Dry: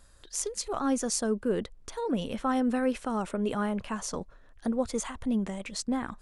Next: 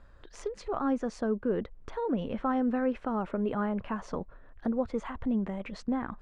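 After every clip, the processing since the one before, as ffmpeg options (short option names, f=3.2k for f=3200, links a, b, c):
-filter_complex "[0:a]lowpass=1.9k,asplit=2[a][b];[b]acompressor=threshold=-37dB:ratio=6,volume=2dB[c];[a][c]amix=inputs=2:normalize=0,volume=-3.5dB"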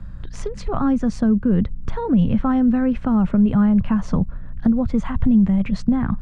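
-filter_complex "[0:a]aeval=exprs='val(0)+0.000891*(sin(2*PI*60*n/s)+sin(2*PI*2*60*n/s)/2+sin(2*PI*3*60*n/s)/3+sin(2*PI*4*60*n/s)/4+sin(2*PI*5*60*n/s)/5)':c=same,lowshelf=f=260:t=q:w=1.5:g=13,acrossover=split=130|3000[a][b][c];[b]acompressor=threshold=-27dB:ratio=2[d];[a][d][c]amix=inputs=3:normalize=0,volume=8.5dB"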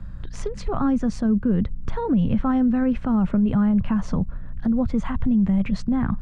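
-af "alimiter=limit=-12.5dB:level=0:latency=1:release=49,volume=-1dB"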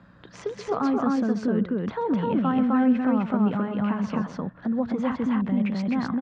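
-filter_complex "[0:a]highpass=280,lowpass=4.6k,asplit=2[a][b];[b]aecho=0:1:131.2|256.6:0.251|0.891[c];[a][c]amix=inputs=2:normalize=0"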